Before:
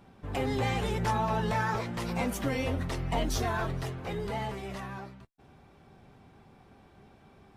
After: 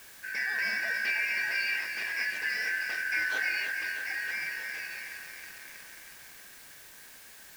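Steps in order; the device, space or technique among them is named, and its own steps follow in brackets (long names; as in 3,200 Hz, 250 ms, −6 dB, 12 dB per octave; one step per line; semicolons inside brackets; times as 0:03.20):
parametric band 2,500 Hz +6 dB 0.99 octaves
split-band scrambled radio (band-splitting scrambler in four parts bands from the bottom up 3142; band-pass filter 360–3,400 Hz; white noise bed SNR 17 dB)
feedback echo at a low word length 319 ms, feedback 80%, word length 8 bits, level −8.5 dB
level −1.5 dB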